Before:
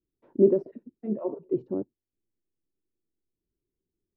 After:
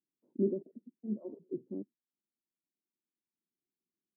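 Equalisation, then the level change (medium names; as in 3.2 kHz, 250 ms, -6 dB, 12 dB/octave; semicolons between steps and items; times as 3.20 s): ladder band-pass 250 Hz, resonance 45%; 0.0 dB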